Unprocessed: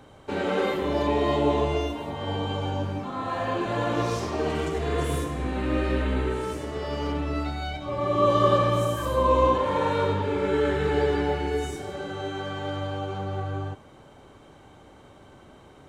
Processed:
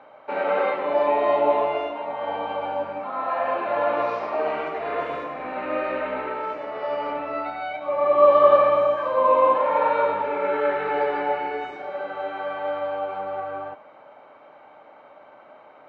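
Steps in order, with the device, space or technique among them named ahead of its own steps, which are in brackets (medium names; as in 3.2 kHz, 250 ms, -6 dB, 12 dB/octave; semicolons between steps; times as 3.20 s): phone earpiece (cabinet simulation 380–3400 Hz, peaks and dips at 380 Hz -7 dB, 610 Hz +10 dB, 870 Hz +6 dB, 1.3 kHz +6 dB, 2.3 kHz +5 dB, 3.3 kHz -8 dB)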